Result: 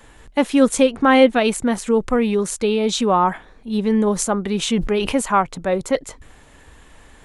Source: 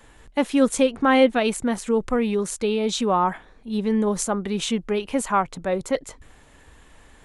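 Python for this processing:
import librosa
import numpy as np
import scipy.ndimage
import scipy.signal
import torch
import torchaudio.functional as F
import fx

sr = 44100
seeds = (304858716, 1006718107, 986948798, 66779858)

y = fx.sustainer(x, sr, db_per_s=58.0, at=(4.68, 5.15))
y = y * 10.0 ** (4.0 / 20.0)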